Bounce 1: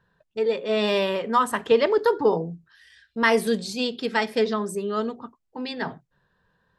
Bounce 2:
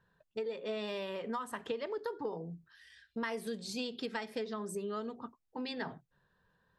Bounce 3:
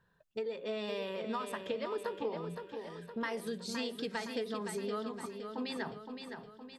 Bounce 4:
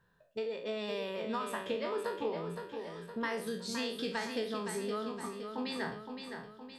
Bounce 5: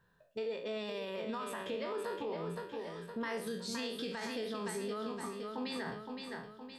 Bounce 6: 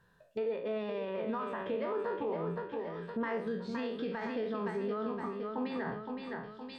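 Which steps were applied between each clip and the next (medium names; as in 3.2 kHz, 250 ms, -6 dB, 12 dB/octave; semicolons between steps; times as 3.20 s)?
compression 10:1, threshold -29 dBFS, peak gain reduction 16 dB; trim -5.5 dB
feedback delay 516 ms, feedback 52%, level -7 dB
spectral sustain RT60 0.43 s
peak limiter -30 dBFS, peak gain reduction 8.5 dB
low-pass that closes with the level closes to 1.8 kHz, closed at -39.5 dBFS; trim +4 dB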